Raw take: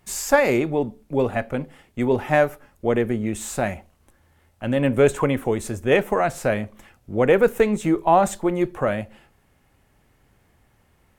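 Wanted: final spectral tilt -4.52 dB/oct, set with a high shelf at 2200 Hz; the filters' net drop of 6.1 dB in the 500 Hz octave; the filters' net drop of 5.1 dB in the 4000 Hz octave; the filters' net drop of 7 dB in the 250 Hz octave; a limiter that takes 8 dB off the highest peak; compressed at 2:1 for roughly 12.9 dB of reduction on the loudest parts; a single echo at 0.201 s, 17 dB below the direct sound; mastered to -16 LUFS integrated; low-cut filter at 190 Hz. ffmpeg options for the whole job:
-af "highpass=190,equalizer=f=250:t=o:g=-5.5,equalizer=f=500:t=o:g=-5.5,highshelf=f=2.2k:g=-3.5,equalizer=f=4k:t=o:g=-3.5,acompressor=threshold=-40dB:ratio=2,alimiter=level_in=2dB:limit=-24dB:level=0:latency=1,volume=-2dB,aecho=1:1:201:0.141,volume=23dB"

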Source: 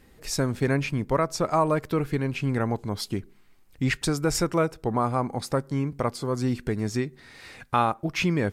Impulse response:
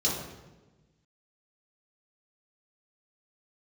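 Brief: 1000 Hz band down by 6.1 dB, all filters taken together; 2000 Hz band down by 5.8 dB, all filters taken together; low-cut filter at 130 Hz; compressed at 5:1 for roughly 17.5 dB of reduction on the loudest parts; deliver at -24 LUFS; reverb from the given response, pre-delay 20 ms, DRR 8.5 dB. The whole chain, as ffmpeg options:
-filter_complex "[0:a]highpass=130,equalizer=f=1k:t=o:g=-6.5,equalizer=f=2k:t=o:g=-5.5,acompressor=threshold=-42dB:ratio=5,asplit=2[a][b];[1:a]atrim=start_sample=2205,adelay=20[c];[b][c]afir=irnorm=-1:irlink=0,volume=-18dB[d];[a][d]amix=inputs=2:normalize=0,volume=19dB"

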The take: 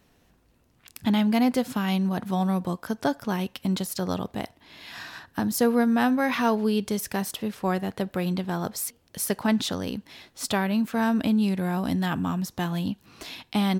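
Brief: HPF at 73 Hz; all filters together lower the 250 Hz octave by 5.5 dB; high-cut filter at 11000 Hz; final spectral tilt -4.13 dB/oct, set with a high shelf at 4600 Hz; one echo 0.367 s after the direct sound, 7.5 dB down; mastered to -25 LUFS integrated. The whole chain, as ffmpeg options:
-af "highpass=73,lowpass=11k,equalizer=f=250:t=o:g=-7,highshelf=f=4.6k:g=3.5,aecho=1:1:367:0.422,volume=4dB"

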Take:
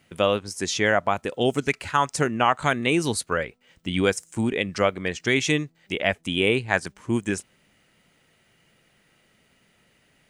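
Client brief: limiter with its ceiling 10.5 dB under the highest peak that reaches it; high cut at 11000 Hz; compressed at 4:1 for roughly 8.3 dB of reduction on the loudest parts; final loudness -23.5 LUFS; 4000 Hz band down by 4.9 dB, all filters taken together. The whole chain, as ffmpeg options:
-af "lowpass=11k,equalizer=f=4k:t=o:g=-7,acompressor=threshold=-26dB:ratio=4,volume=11dB,alimiter=limit=-11.5dB:level=0:latency=1"

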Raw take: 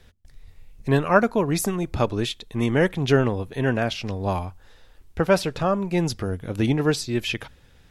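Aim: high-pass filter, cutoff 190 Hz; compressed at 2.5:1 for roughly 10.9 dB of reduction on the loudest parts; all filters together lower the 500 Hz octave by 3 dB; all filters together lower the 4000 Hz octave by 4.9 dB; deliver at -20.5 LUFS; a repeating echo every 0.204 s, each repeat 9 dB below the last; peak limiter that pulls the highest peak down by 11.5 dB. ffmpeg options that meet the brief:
-af "highpass=190,equalizer=f=500:t=o:g=-3.5,equalizer=f=4k:t=o:g=-6.5,acompressor=threshold=-31dB:ratio=2.5,alimiter=level_in=2.5dB:limit=-24dB:level=0:latency=1,volume=-2.5dB,aecho=1:1:204|408|612|816:0.355|0.124|0.0435|0.0152,volume=16.5dB"

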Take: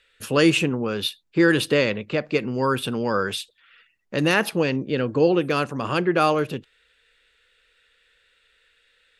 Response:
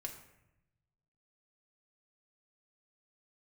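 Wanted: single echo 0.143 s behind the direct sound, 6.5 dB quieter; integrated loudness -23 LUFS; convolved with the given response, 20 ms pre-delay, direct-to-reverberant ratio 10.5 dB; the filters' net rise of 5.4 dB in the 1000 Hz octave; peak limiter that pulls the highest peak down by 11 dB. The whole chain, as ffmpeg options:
-filter_complex "[0:a]equalizer=f=1k:t=o:g=7,alimiter=limit=-13.5dB:level=0:latency=1,aecho=1:1:143:0.473,asplit=2[a][b];[1:a]atrim=start_sample=2205,adelay=20[c];[b][c]afir=irnorm=-1:irlink=0,volume=-8dB[d];[a][d]amix=inputs=2:normalize=0,volume=1dB"

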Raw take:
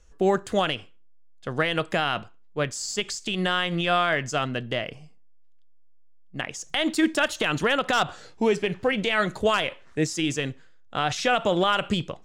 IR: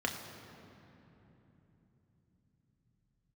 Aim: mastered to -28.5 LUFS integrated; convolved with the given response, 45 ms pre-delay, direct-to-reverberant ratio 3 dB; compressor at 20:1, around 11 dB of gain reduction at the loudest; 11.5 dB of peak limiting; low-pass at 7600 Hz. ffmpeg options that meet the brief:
-filter_complex "[0:a]lowpass=7.6k,acompressor=threshold=-27dB:ratio=20,alimiter=limit=-24dB:level=0:latency=1,asplit=2[a][b];[1:a]atrim=start_sample=2205,adelay=45[c];[b][c]afir=irnorm=-1:irlink=0,volume=-9dB[d];[a][d]amix=inputs=2:normalize=0,volume=5dB"

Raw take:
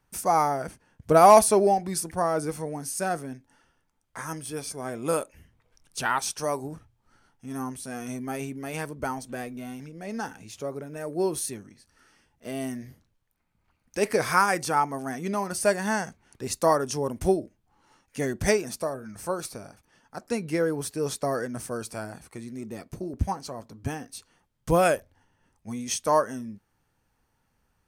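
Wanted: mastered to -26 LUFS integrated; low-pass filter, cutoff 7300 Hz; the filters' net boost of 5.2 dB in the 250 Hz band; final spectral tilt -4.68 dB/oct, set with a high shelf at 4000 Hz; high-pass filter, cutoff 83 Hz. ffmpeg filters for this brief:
-af "highpass=83,lowpass=7.3k,equalizer=f=250:t=o:g=7,highshelf=f=4k:g=5.5,volume=-0.5dB"

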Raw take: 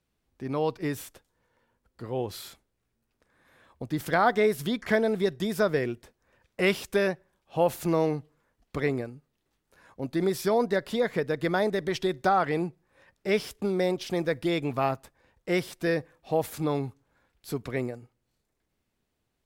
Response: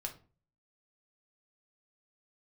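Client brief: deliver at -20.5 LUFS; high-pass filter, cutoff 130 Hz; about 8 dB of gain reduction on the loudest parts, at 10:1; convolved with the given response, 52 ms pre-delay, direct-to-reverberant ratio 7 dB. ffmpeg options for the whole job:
-filter_complex "[0:a]highpass=130,acompressor=threshold=-26dB:ratio=10,asplit=2[a][b];[1:a]atrim=start_sample=2205,adelay=52[c];[b][c]afir=irnorm=-1:irlink=0,volume=-6dB[d];[a][d]amix=inputs=2:normalize=0,volume=12dB"

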